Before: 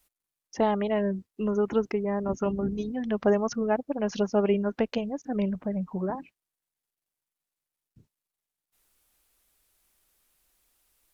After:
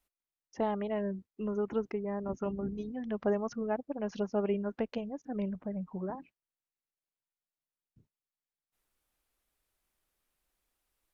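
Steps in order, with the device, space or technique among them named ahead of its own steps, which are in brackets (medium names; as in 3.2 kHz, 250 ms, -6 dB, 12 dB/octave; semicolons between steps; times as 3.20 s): behind a face mask (treble shelf 3.5 kHz -8 dB); trim -7 dB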